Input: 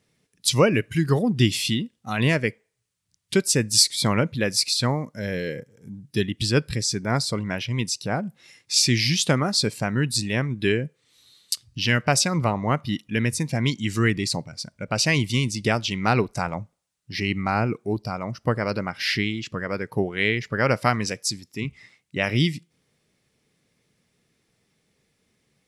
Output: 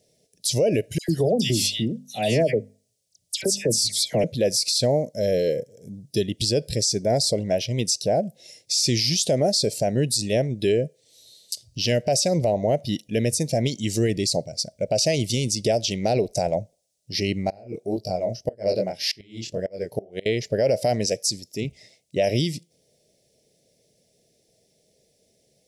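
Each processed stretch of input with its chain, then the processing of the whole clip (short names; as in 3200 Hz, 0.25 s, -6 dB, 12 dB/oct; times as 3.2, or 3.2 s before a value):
0.98–4.24 notches 50/100/150/200/250 Hz + dispersion lows, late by 0.105 s, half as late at 1900 Hz
17.49–20.26 chorus 1.8 Hz, delay 20 ms, depth 6.1 ms + flipped gate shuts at -16 dBFS, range -25 dB + short-mantissa float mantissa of 8-bit
whole clip: EQ curve 280 Hz 0 dB, 640 Hz +14 dB, 1200 Hz -28 dB, 1700 Hz -10 dB, 5500 Hz +9 dB, 7900 Hz +7 dB; limiter -12.5 dBFS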